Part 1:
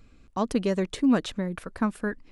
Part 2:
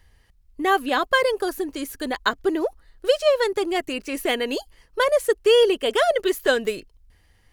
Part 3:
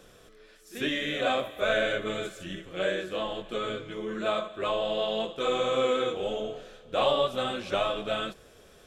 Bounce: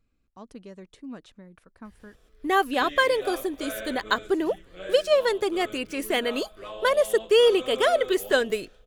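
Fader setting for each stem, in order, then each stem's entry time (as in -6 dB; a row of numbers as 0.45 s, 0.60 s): -18.0 dB, -2.0 dB, -10.0 dB; 0.00 s, 1.85 s, 2.00 s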